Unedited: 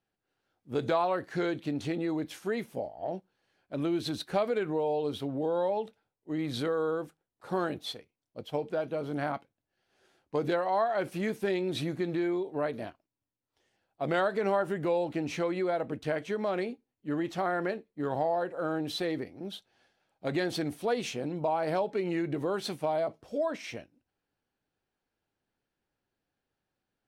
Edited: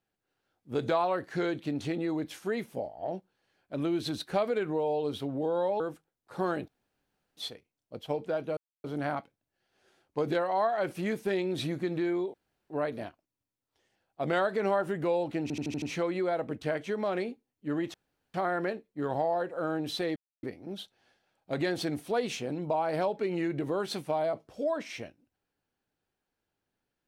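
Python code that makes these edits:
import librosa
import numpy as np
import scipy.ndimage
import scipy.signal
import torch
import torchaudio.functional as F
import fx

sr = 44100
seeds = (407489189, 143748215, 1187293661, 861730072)

y = fx.edit(x, sr, fx.cut(start_s=5.8, length_s=1.13),
    fx.insert_room_tone(at_s=7.81, length_s=0.69),
    fx.insert_silence(at_s=9.01, length_s=0.27),
    fx.insert_room_tone(at_s=12.51, length_s=0.36),
    fx.stutter(start_s=15.23, slice_s=0.08, count=6),
    fx.insert_room_tone(at_s=17.35, length_s=0.4),
    fx.insert_silence(at_s=19.17, length_s=0.27), tone=tone)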